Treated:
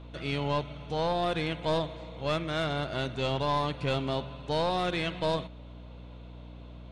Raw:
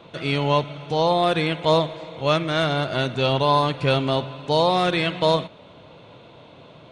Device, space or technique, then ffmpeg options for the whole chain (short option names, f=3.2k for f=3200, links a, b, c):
valve amplifier with mains hum: -af "aeval=exprs='(tanh(3.98*val(0)+0.35)-tanh(0.35))/3.98':c=same,aeval=exprs='val(0)+0.0141*(sin(2*PI*60*n/s)+sin(2*PI*2*60*n/s)/2+sin(2*PI*3*60*n/s)/3+sin(2*PI*4*60*n/s)/4+sin(2*PI*5*60*n/s)/5)':c=same,volume=-7.5dB"